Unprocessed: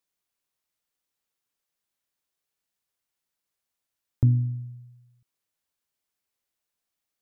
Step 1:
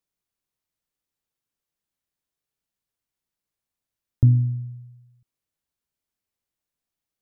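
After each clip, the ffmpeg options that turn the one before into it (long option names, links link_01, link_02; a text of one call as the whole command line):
ffmpeg -i in.wav -af "lowshelf=frequency=320:gain=9.5,volume=-4dB" out.wav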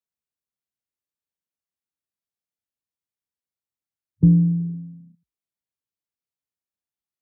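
ffmpeg -i in.wav -af "alimiter=limit=-13.5dB:level=0:latency=1:release=441,afwtdn=0.0178,afreqshift=48,volume=7dB" out.wav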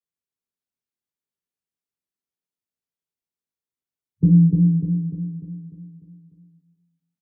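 ffmpeg -i in.wav -filter_complex "[0:a]flanger=delay=17:depth=6.1:speed=2.5,equalizer=frequency=160:width_type=o:width=0.33:gain=7,equalizer=frequency=250:width_type=o:width=0.33:gain=6,equalizer=frequency=400:width_type=o:width=0.33:gain=7,asplit=2[link_01][link_02];[link_02]aecho=0:1:298|596|894|1192|1490|1788|2086:0.631|0.322|0.164|0.0837|0.0427|0.0218|0.0111[link_03];[link_01][link_03]amix=inputs=2:normalize=0,volume=-1.5dB" out.wav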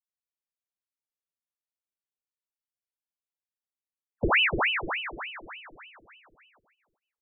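ffmpeg -i in.wav -af "aeval=exprs='val(0)*sin(2*PI*1500*n/s+1500*0.9/3.4*sin(2*PI*3.4*n/s))':channel_layout=same,volume=-7dB" out.wav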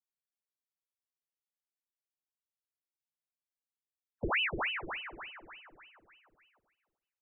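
ffmpeg -i in.wav -filter_complex "[0:a]asplit=2[link_01][link_02];[link_02]adelay=346,lowpass=frequency=1800:poles=1,volume=-23dB,asplit=2[link_03][link_04];[link_04]adelay=346,lowpass=frequency=1800:poles=1,volume=0.36[link_05];[link_01][link_03][link_05]amix=inputs=3:normalize=0,volume=-8.5dB" out.wav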